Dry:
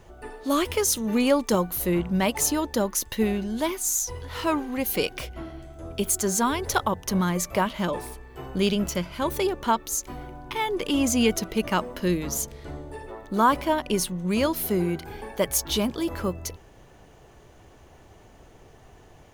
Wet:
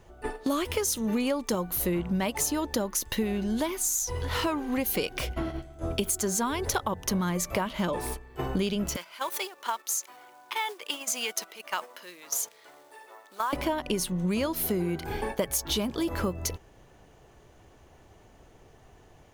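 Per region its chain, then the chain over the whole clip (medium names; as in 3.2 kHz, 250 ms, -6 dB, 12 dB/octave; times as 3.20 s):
8.96–13.53 s: compression 2:1, threshold -33 dBFS + companded quantiser 6-bit + high-pass 830 Hz
whole clip: gate -38 dBFS, range -12 dB; compression 6:1, threshold -34 dBFS; trim +8 dB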